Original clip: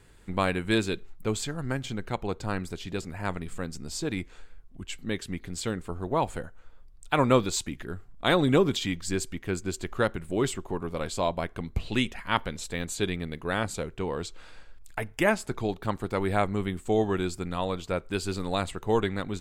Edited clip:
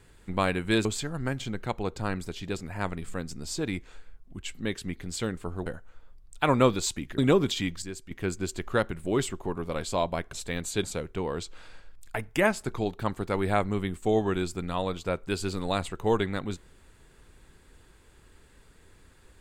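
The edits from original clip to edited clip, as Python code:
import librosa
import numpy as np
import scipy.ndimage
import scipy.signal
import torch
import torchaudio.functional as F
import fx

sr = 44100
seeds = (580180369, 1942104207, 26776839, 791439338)

y = fx.edit(x, sr, fx.cut(start_s=0.85, length_s=0.44),
    fx.cut(start_s=6.1, length_s=0.26),
    fx.cut(start_s=7.88, length_s=0.55),
    fx.clip_gain(start_s=9.07, length_s=0.29, db=-9.5),
    fx.cut(start_s=11.58, length_s=0.99),
    fx.cut(start_s=13.08, length_s=0.59), tone=tone)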